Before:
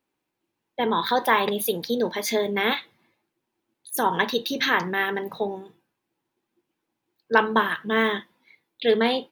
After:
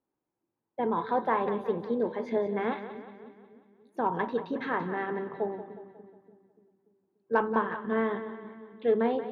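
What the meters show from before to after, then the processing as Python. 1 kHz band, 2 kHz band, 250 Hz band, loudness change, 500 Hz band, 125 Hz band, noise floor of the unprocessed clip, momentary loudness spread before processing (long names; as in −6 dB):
−6.0 dB, −12.5 dB, −4.0 dB, −6.5 dB, −4.0 dB, −4.0 dB, −81 dBFS, 9 LU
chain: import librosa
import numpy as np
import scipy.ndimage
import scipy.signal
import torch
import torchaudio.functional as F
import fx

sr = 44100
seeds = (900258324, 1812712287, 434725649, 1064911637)

y = scipy.signal.sosfilt(scipy.signal.butter(2, 1100.0, 'lowpass', fs=sr, output='sos'), x)
y = fx.cheby_harmonics(y, sr, harmonics=(5,), levels_db=(-33,), full_scale_db=-5.5)
y = fx.echo_split(y, sr, split_hz=390.0, low_ms=291, high_ms=181, feedback_pct=52, wet_db=-11.5)
y = y * librosa.db_to_amplitude(-5.0)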